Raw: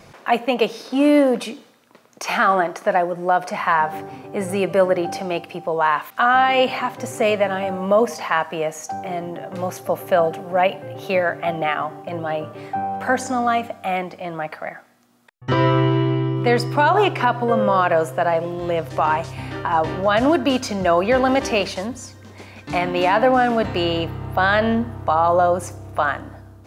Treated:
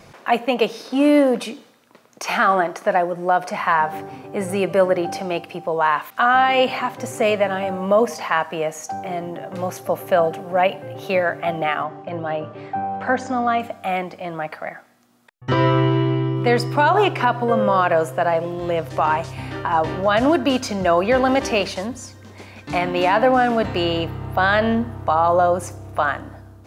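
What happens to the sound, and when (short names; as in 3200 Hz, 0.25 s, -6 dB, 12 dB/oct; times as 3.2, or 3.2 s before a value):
11.83–13.6 air absorption 120 m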